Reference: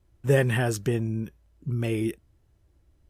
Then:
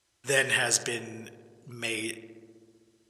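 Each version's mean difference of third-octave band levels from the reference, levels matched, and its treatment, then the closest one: 9.5 dB: frequency weighting ITU-R 468; on a send: filtered feedback delay 64 ms, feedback 84%, low-pass 2.2 kHz, level -13 dB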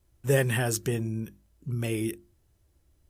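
3.0 dB: treble shelf 5.1 kHz +11 dB; hum notches 50/100/150/200/250/300/350 Hz; trim -2.5 dB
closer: second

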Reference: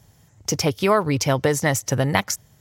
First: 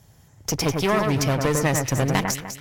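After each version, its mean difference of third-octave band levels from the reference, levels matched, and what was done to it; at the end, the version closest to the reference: 7.5 dB: one-sided clip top -24.5 dBFS; on a send: echo whose repeats swap between lows and highs 100 ms, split 2.2 kHz, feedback 58%, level -4 dB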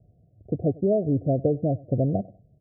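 15.0 dB: Chebyshev low-pass 730 Hz, order 10; dynamic bell 240 Hz, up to +4 dB, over -36 dBFS, Q 1.5; on a send: feedback delay 98 ms, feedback 28%, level -23 dB; on the sum: trim -3 dB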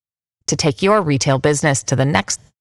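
3.0 dB: single-diode clipper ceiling -6.5 dBFS; resampled via 22.05 kHz; gate -43 dBFS, range -57 dB; trim +5.5 dB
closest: third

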